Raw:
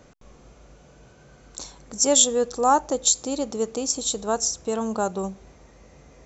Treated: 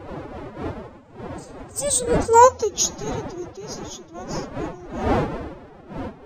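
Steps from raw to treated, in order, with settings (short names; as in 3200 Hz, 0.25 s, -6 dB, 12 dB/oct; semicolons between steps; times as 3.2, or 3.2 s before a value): Doppler pass-by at 2.41, 40 m/s, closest 6.2 m; wind noise 580 Hz -37 dBFS; formant-preserving pitch shift +10 st; gain +7.5 dB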